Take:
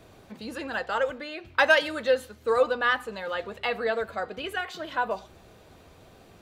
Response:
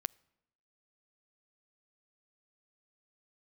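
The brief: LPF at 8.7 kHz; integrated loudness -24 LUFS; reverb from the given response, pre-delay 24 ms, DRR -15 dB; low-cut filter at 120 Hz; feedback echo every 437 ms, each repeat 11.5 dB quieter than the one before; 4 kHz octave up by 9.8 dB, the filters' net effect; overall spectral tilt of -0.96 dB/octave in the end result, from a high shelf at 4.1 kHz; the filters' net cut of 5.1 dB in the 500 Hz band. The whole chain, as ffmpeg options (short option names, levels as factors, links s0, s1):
-filter_complex "[0:a]highpass=120,lowpass=8700,equalizer=f=500:t=o:g=-6,equalizer=f=4000:t=o:g=8.5,highshelf=f=4100:g=9,aecho=1:1:437|874|1311:0.266|0.0718|0.0194,asplit=2[s0][s1];[1:a]atrim=start_sample=2205,adelay=24[s2];[s1][s2]afir=irnorm=-1:irlink=0,volume=6.31[s3];[s0][s3]amix=inputs=2:normalize=0,volume=0.2"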